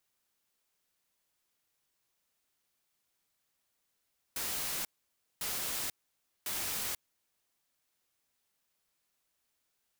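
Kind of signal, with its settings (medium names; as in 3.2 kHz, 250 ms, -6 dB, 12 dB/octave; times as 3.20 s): noise bursts white, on 0.49 s, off 0.56 s, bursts 3, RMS -36 dBFS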